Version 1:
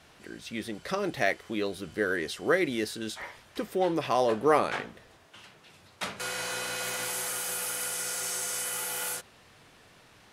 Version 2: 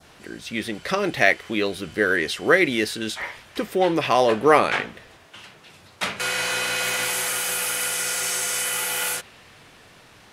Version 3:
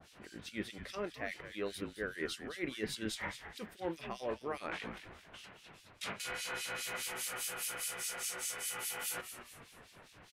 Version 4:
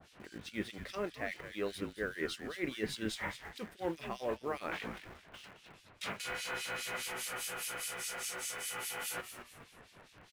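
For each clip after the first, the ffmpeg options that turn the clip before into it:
-af "adynamicequalizer=threshold=0.00562:dfrequency=2400:dqfactor=1.1:tfrequency=2400:tqfactor=1.1:attack=5:release=100:ratio=0.375:range=3:mode=boostabove:tftype=bell,volume=2.11"
-filter_complex "[0:a]areverse,acompressor=threshold=0.0398:ratio=10,areverse,acrossover=split=2500[s0][s1];[s0]aeval=exprs='val(0)*(1-1/2+1/2*cos(2*PI*4.9*n/s))':c=same[s2];[s1]aeval=exprs='val(0)*(1-1/2-1/2*cos(2*PI*4.9*n/s))':c=same[s3];[s2][s3]amix=inputs=2:normalize=0,asplit=5[s4][s5][s6][s7][s8];[s5]adelay=216,afreqshift=-130,volume=0.299[s9];[s6]adelay=432,afreqshift=-260,volume=0.114[s10];[s7]adelay=648,afreqshift=-390,volume=0.0432[s11];[s8]adelay=864,afreqshift=-520,volume=0.0164[s12];[s4][s9][s10][s11][s12]amix=inputs=5:normalize=0,volume=0.596"
-filter_complex "[0:a]highshelf=f=5000:g=-5,asplit=2[s0][s1];[s1]acrusher=bits=7:mix=0:aa=0.000001,volume=0.251[s2];[s0][s2]amix=inputs=2:normalize=0"

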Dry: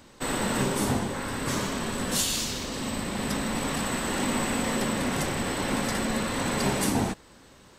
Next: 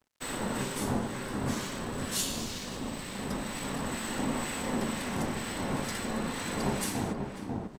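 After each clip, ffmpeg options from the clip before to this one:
-filter_complex "[0:a]asplit=2[s0][s1];[s1]adelay=542,lowpass=f=890:p=1,volume=0.708,asplit=2[s2][s3];[s3]adelay=542,lowpass=f=890:p=1,volume=0.39,asplit=2[s4][s5];[s5]adelay=542,lowpass=f=890:p=1,volume=0.39,asplit=2[s6][s7];[s7]adelay=542,lowpass=f=890:p=1,volume=0.39,asplit=2[s8][s9];[s9]adelay=542,lowpass=f=890:p=1,volume=0.39[s10];[s0][s2][s4][s6][s8][s10]amix=inputs=6:normalize=0,aeval=exprs='sgn(val(0))*max(abs(val(0))-0.00473,0)':c=same,acrossover=split=1400[s11][s12];[s11]aeval=exprs='val(0)*(1-0.5/2+0.5/2*cos(2*PI*2.1*n/s))':c=same[s13];[s12]aeval=exprs='val(0)*(1-0.5/2-0.5/2*cos(2*PI*2.1*n/s))':c=same[s14];[s13][s14]amix=inputs=2:normalize=0,volume=0.668"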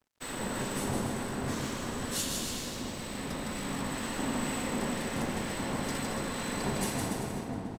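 -af "aecho=1:1:160|288|390.4|472.3|537.9:0.631|0.398|0.251|0.158|0.1,volume=0.75"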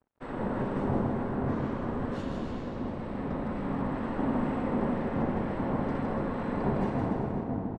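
-af "lowpass=1100,volume=1.68"

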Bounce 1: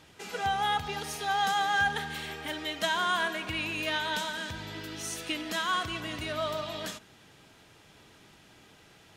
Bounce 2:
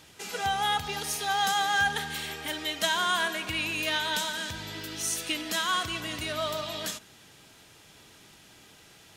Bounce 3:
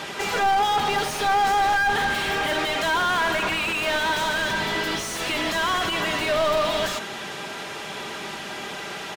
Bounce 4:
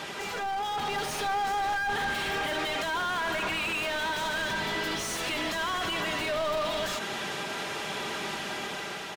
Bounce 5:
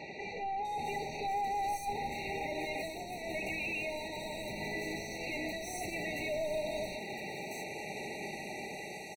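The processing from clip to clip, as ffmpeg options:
-af "highshelf=f=4000:g=9.5"
-filter_complex "[0:a]aecho=1:1:5.1:0.44,asplit=2[s0][s1];[s1]highpass=f=720:p=1,volume=63.1,asoftclip=type=tanh:threshold=0.266[s2];[s0][s2]amix=inputs=2:normalize=0,lowpass=f=1100:p=1,volume=0.501"
-af "alimiter=limit=0.0668:level=0:latency=1:release=74,dynaudnorm=f=310:g=5:m=1.58,volume=0.596"
-filter_complex "[0:a]acrossover=split=5100[s0][s1];[s1]adelay=650[s2];[s0][s2]amix=inputs=2:normalize=0,afftfilt=real='re*eq(mod(floor(b*sr/1024/930),2),0)':imag='im*eq(mod(floor(b*sr/1024/930),2),0)':win_size=1024:overlap=0.75,volume=0.596"

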